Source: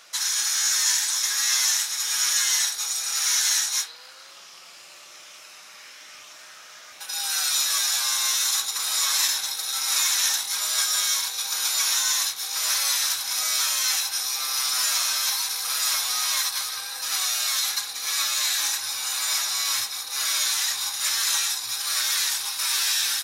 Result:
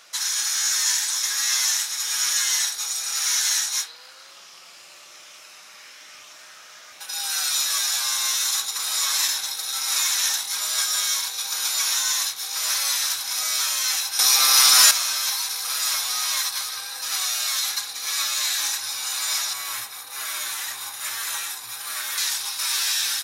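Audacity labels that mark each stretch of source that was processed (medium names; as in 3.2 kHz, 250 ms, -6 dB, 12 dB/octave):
14.190000	14.910000	gain +10.5 dB
19.530000	22.180000	peaking EQ 5.1 kHz -9.5 dB 1.4 oct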